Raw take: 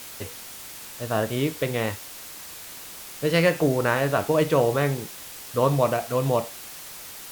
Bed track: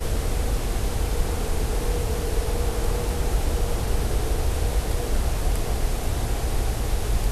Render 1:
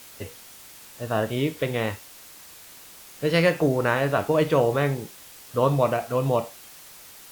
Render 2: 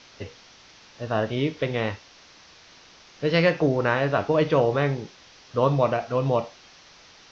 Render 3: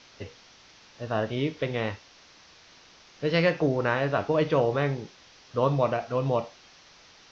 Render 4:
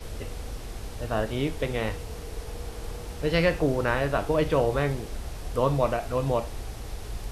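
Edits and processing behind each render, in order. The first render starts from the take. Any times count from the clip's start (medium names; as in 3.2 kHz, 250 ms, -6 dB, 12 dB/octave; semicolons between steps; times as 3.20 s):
noise print and reduce 6 dB
steep low-pass 6.1 kHz 72 dB/octave
trim -3 dB
add bed track -12 dB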